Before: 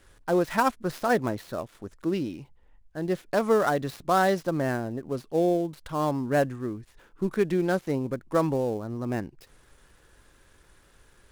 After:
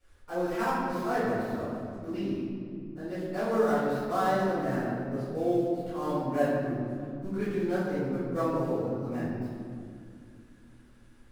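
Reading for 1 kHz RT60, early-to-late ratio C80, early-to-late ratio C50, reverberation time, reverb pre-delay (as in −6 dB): 2.0 s, 0.0 dB, −3.0 dB, 2.2 s, 4 ms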